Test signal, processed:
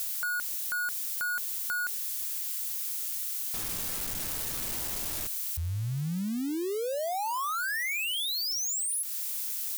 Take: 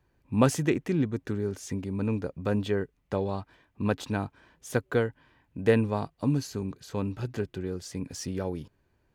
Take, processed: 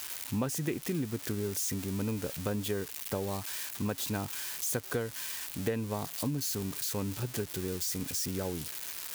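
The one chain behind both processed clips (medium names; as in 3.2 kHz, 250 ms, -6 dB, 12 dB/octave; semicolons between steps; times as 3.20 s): zero-crossing glitches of -24 dBFS; compression 6:1, threshold -28 dBFS; trim -1 dB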